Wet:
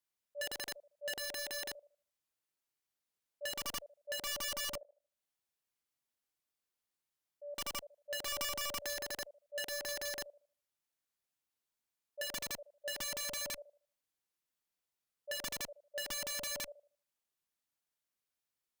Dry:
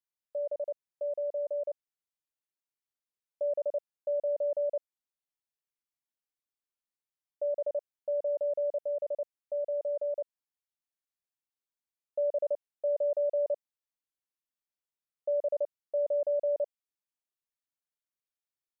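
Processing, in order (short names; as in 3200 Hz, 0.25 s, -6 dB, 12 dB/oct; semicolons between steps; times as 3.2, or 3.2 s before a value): auto swell 0.206 s; 4.75–7.55 compressor 2:1, threshold -57 dBFS, peak gain reduction 15 dB; on a send: thinning echo 77 ms, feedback 40%, high-pass 630 Hz, level -19 dB; on the sum: added harmonics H 2 -25 dB, 5 -27 dB, 7 -41 dB, 8 -44 dB, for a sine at -24 dBFS; wrapped overs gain 37 dB; 8.38–9.02 three-band squash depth 100%; gain +2.5 dB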